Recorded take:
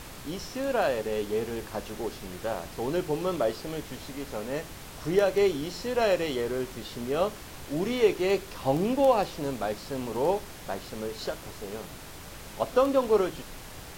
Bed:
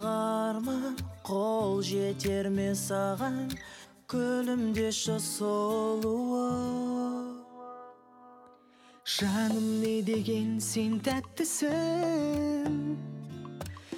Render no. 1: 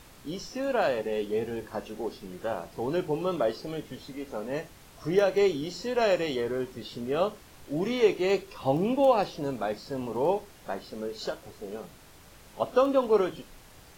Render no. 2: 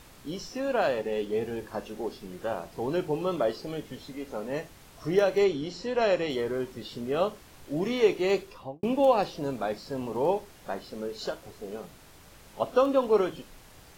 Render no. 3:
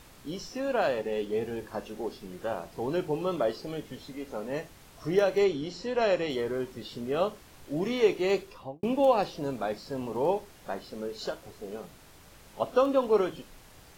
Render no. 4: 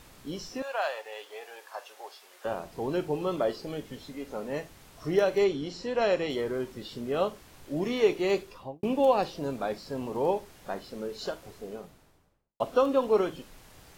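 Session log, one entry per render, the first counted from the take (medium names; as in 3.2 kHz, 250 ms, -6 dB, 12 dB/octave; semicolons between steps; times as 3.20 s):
noise print and reduce 9 dB
0.60–1.41 s: median filter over 3 samples; 5.44–6.30 s: distance through air 59 m; 8.42–8.83 s: studio fade out
trim -1 dB
0.62–2.45 s: high-pass 660 Hz 24 dB/octave; 11.52–12.60 s: studio fade out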